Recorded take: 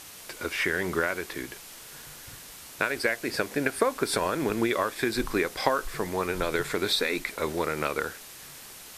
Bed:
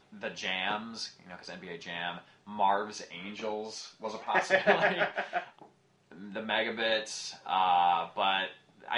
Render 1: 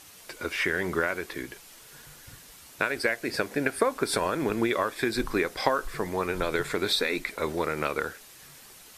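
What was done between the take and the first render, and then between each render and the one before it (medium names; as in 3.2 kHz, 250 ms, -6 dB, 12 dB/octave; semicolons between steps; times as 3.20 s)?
noise reduction 6 dB, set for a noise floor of -46 dBFS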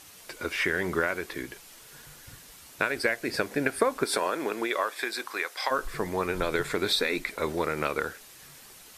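4.04–5.70 s: high-pass 260 Hz -> 1 kHz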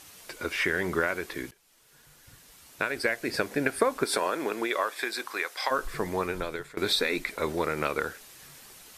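1.51–3.27 s: fade in, from -19.5 dB; 6.17–6.77 s: fade out, to -21.5 dB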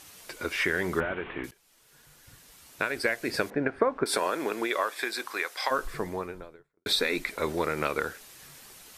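1.00–1.44 s: one-bit delta coder 16 kbps, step -35.5 dBFS; 3.50–4.06 s: low-pass 1.6 kHz; 5.71–6.86 s: studio fade out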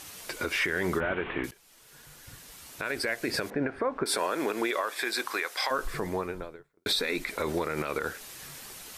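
in parallel at -1.5 dB: compression, threshold -35 dBFS, peak gain reduction 15.5 dB; on the sum: peak limiter -18 dBFS, peak gain reduction 9.5 dB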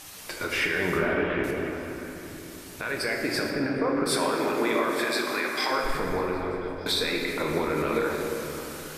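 repeats whose band climbs or falls 173 ms, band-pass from 240 Hz, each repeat 0.7 oct, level -5.5 dB; simulated room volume 190 m³, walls hard, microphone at 0.5 m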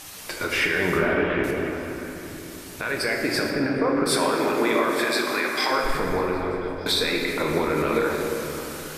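trim +3.5 dB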